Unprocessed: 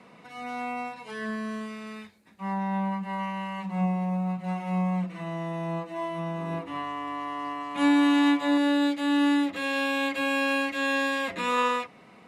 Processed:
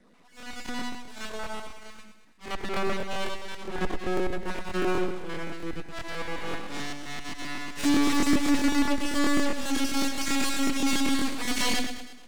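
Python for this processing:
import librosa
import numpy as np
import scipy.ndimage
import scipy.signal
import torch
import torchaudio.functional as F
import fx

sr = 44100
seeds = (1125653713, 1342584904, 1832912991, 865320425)

y = fx.spec_dropout(x, sr, seeds[0], share_pct=32)
y = fx.cheby_harmonics(y, sr, harmonics=(7, 8), levels_db=(-25, -7), full_scale_db=-13.0)
y = fx.dynamic_eq(y, sr, hz=270.0, q=4.4, threshold_db=-38.0, ratio=4.0, max_db=6)
y = np.maximum(y, 0.0)
y = fx.graphic_eq(y, sr, hz=(125, 250, 8000), db=(-3, 5, 4))
y = 10.0 ** (-20.0 / 20.0) * np.tanh(y / 10.0 ** (-20.0 / 20.0))
y = fx.echo_feedback(y, sr, ms=107, feedback_pct=50, wet_db=-8)
y = fx.buffer_crackle(y, sr, first_s=0.38, period_s=0.13, block=1024, kind='repeat')
y = F.gain(torch.from_numpy(y), 2.5).numpy()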